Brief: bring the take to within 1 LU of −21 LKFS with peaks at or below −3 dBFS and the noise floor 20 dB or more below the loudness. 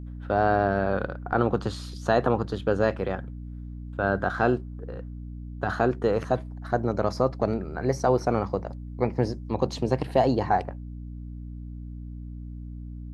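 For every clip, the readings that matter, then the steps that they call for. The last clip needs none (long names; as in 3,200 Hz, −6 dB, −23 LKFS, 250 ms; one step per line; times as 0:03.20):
mains hum 60 Hz; hum harmonics up to 300 Hz; level of the hum −35 dBFS; integrated loudness −26.5 LKFS; sample peak −7.0 dBFS; target loudness −21.0 LKFS
→ hum removal 60 Hz, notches 5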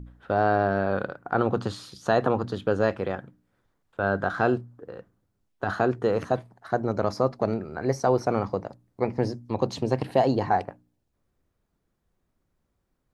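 mains hum none found; integrated loudness −26.5 LKFS; sample peak −7.0 dBFS; target loudness −21.0 LKFS
→ level +5.5 dB
brickwall limiter −3 dBFS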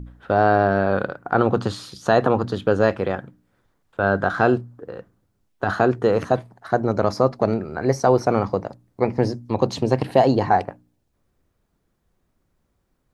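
integrated loudness −21.0 LKFS; sample peak −3.0 dBFS; background noise floor −70 dBFS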